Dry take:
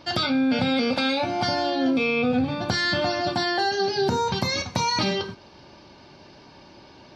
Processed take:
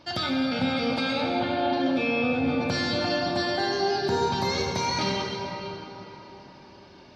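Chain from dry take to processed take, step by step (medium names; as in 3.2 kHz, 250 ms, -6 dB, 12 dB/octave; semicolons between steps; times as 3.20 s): 1.21–1.73 s: Chebyshev low-pass 4.1 kHz, order 10; reverberation RT60 4.0 s, pre-delay 47 ms, DRR 0.5 dB; trim -5 dB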